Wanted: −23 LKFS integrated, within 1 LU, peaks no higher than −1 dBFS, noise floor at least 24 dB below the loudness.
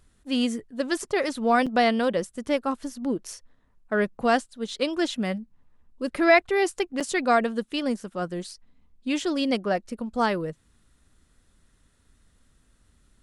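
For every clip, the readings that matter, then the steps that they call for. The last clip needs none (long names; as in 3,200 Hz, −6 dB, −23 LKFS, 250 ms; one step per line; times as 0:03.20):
number of dropouts 2; longest dropout 5.9 ms; integrated loudness −26.0 LKFS; sample peak −7.5 dBFS; target loudness −23.0 LKFS
→ repair the gap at 0:01.66/0:07.00, 5.9 ms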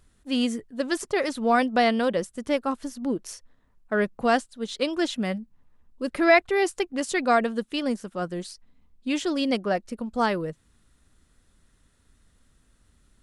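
number of dropouts 0; integrated loudness −26.0 LKFS; sample peak −7.5 dBFS; target loudness −23.0 LKFS
→ level +3 dB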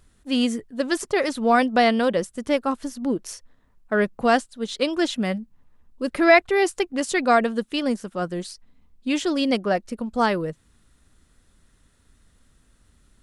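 integrated loudness −23.0 LKFS; sample peak −4.5 dBFS; background noise floor −61 dBFS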